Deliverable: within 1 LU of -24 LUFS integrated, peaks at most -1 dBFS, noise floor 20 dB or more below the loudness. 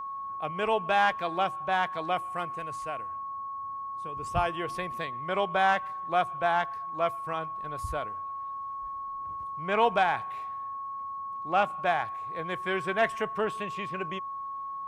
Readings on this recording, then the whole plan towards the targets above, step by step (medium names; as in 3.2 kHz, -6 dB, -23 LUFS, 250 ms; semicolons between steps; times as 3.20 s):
steady tone 1.1 kHz; tone level -34 dBFS; loudness -30.5 LUFS; peak level -12.0 dBFS; loudness target -24.0 LUFS
-> band-stop 1.1 kHz, Q 30; trim +6.5 dB